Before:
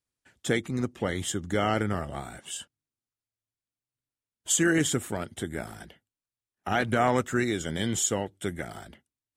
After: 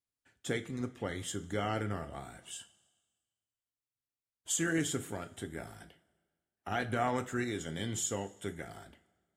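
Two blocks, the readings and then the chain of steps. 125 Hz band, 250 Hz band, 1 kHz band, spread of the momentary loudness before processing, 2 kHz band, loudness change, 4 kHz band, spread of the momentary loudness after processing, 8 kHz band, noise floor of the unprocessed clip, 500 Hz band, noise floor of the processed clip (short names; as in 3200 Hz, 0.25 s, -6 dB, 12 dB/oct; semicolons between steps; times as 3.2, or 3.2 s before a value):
-7.0 dB, -8.5 dB, -7.5 dB, 15 LU, -8.0 dB, -8.0 dB, -8.0 dB, 14 LU, -8.0 dB, under -85 dBFS, -8.5 dB, under -85 dBFS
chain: two-slope reverb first 0.26 s, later 1.5 s, from -18 dB, DRR 8 dB; gain -8.5 dB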